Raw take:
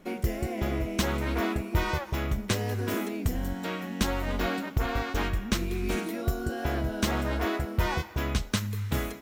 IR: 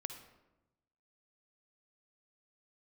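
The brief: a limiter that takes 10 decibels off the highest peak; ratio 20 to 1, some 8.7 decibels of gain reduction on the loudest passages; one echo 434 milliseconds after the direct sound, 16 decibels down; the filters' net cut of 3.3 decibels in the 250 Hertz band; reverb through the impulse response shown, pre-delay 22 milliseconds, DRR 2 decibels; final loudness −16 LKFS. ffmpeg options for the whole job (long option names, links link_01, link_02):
-filter_complex "[0:a]equalizer=frequency=250:width_type=o:gain=-4.5,acompressor=threshold=-30dB:ratio=20,alimiter=level_in=3.5dB:limit=-24dB:level=0:latency=1,volume=-3.5dB,aecho=1:1:434:0.158,asplit=2[link_01][link_02];[1:a]atrim=start_sample=2205,adelay=22[link_03];[link_02][link_03]afir=irnorm=-1:irlink=0,volume=0dB[link_04];[link_01][link_04]amix=inputs=2:normalize=0,volume=20dB"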